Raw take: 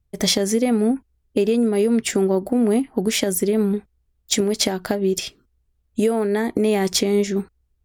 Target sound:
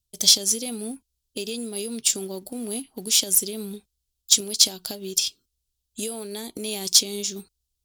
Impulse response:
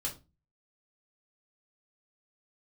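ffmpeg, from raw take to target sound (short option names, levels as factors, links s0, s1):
-af "highshelf=f=4100:g=-9,aexciter=amount=14.1:drive=7.8:freq=3000,acrusher=bits=6:mode=log:mix=0:aa=0.000001,volume=0.188"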